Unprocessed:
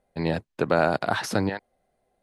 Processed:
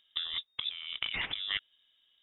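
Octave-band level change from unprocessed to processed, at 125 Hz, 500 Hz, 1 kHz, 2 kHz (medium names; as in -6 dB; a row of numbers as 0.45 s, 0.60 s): -27.0 dB, -34.0 dB, -22.5 dB, -7.5 dB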